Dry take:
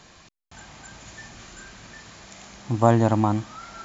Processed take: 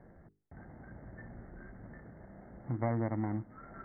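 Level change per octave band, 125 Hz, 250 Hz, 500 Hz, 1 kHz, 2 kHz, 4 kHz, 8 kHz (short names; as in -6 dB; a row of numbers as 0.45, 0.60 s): -12.5 dB, -13.0 dB, -15.5 dB, -17.5 dB, -13.0 dB, under -40 dB, n/a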